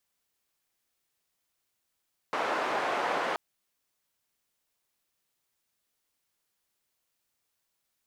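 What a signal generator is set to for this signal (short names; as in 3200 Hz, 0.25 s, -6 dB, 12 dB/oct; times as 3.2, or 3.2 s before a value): noise band 460–1100 Hz, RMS -30 dBFS 1.03 s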